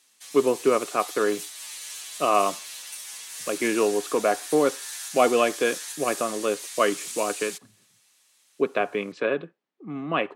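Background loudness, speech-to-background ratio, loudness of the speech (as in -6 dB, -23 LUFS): -35.0 LUFS, 9.5 dB, -25.5 LUFS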